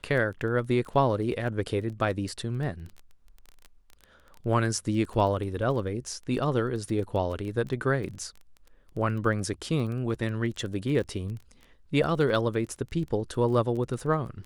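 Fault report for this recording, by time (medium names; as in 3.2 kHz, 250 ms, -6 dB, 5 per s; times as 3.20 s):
crackle 15 per s -34 dBFS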